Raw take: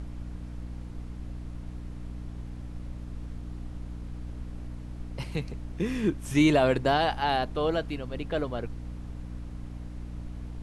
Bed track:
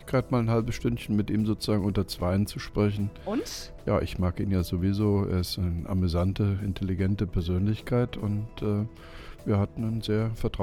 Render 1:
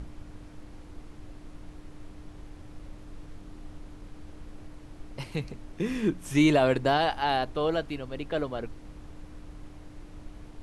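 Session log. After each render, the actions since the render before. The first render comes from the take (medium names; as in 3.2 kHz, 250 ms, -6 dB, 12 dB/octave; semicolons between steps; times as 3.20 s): de-hum 60 Hz, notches 4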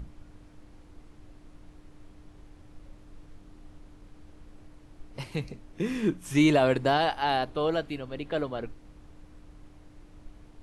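noise print and reduce 6 dB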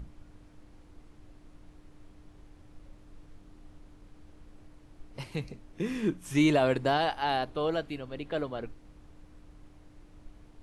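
trim -2.5 dB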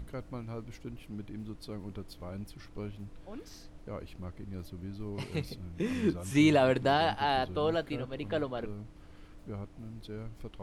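add bed track -16 dB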